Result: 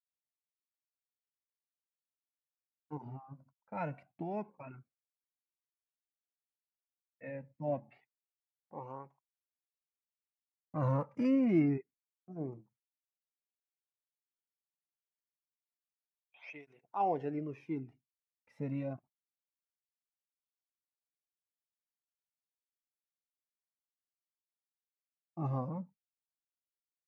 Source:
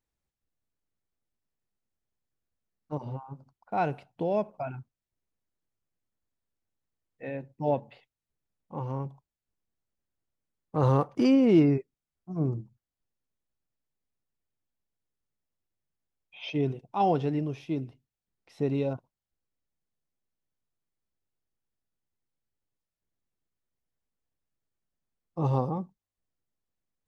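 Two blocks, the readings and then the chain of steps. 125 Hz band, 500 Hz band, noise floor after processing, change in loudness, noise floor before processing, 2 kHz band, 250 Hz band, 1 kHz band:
-9.0 dB, -10.0 dB, under -85 dBFS, -8.0 dB, under -85 dBFS, -8.0 dB, -8.0 dB, -8.0 dB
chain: gate with hold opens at -47 dBFS; resonant high shelf 2700 Hz -6.5 dB, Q 3; tape flanging out of phase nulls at 0.27 Hz, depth 2.8 ms; gain -6.5 dB

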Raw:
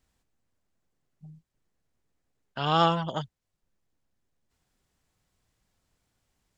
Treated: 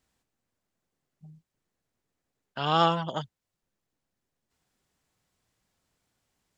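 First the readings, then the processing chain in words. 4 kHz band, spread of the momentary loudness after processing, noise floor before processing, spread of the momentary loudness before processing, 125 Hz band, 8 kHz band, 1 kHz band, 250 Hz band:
0.0 dB, 20 LU, -82 dBFS, 20 LU, -2.0 dB, n/a, 0.0 dB, -1.5 dB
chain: low shelf 73 Hz -11.5 dB

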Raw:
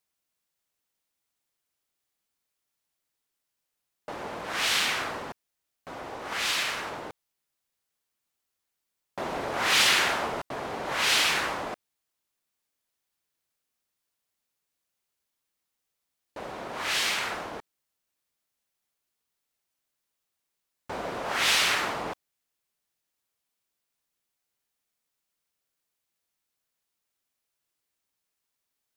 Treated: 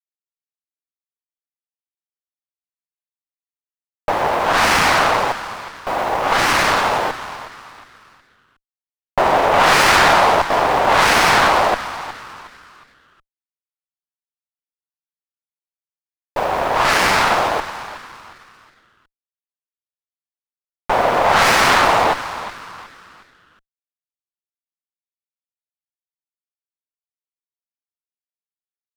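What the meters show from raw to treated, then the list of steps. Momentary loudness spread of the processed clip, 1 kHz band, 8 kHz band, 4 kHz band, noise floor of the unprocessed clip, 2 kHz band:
17 LU, +18.5 dB, +6.5 dB, +6.0 dB, -83 dBFS, +11.5 dB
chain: bell 800 Hz +9 dB 1.9 oct; in parallel at -1 dB: limiter -17.5 dBFS, peak gain reduction 10.5 dB; on the sum: bit-crush 7-bit; overdrive pedal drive 11 dB, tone 4400 Hz, clips at -2.5 dBFS; on a send: frequency-shifting echo 0.364 s, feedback 38%, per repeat +150 Hz, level -13.5 dB; on the sum: running maximum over 9 samples; gain +3 dB

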